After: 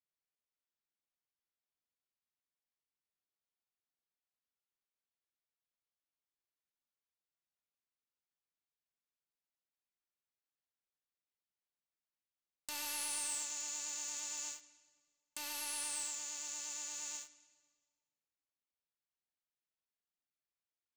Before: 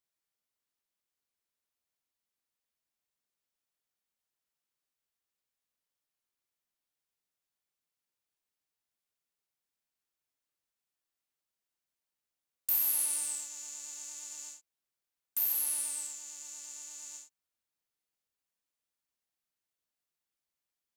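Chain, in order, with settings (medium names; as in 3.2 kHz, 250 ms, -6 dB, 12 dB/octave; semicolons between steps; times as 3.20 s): Bessel low-pass 5 kHz, order 4; waveshaping leveller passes 3; on a send: reverberation RT60 1.6 s, pre-delay 9 ms, DRR 13.5 dB; on the sum: trim -2.5 dB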